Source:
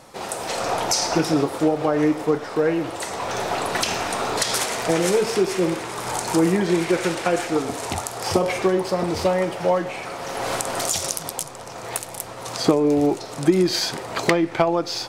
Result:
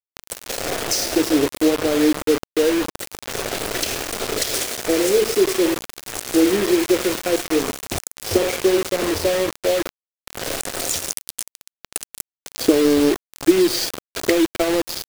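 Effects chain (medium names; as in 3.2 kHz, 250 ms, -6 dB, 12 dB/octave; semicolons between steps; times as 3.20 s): bass shelf 370 Hz +7.5 dB; static phaser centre 400 Hz, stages 4; bit crusher 4-bit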